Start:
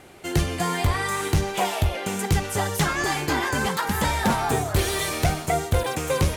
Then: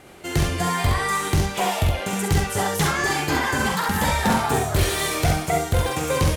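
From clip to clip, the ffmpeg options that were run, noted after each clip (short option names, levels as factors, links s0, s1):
-af "aecho=1:1:45|67:0.531|0.631"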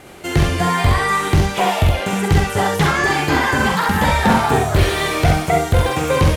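-filter_complex "[0:a]acrossover=split=4000[s0][s1];[s1]acompressor=threshold=0.0126:ratio=4:attack=1:release=60[s2];[s0][s2]amix=inputs=2:normalize=0,volume=2"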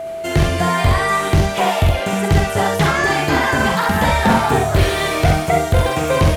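-af "aeval=exprs='val(0)+0.0631*sin(2*PI*660*n/s)':c=same"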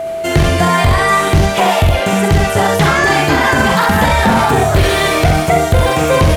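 -af "alimiter=limit=0.355:level=0:latency=1:release=17,volume=2"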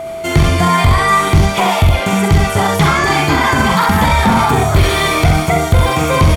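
-af "aecho=1:1:0.9:0.36,volume=0.891"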